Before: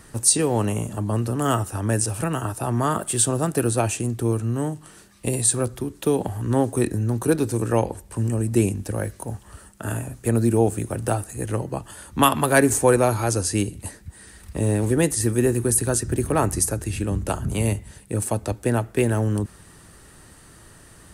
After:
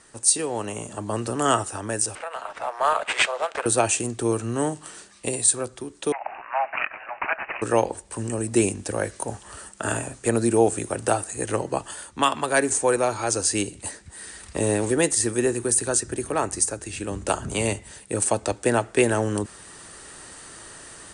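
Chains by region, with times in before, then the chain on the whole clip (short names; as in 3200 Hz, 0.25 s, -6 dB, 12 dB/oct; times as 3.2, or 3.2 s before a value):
2.15–3.66 steep high-pass 510 Hz 48 dB/oct + sample-rate reducer 11000 Hz + high shelf 2700 Hz -10 dB
6.12–7.62 steep high-pass 620 Hz 96 dB/oct + upward compressor, threshold -37 dBFS + careless resampling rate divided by 8×, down none, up filtered
whole clip: tone controls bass -12 dB, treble +3 dB; AGC gain up to 11 dB; Chebyshev low-pass 9400 Hz, order 6; gain -3.5 dB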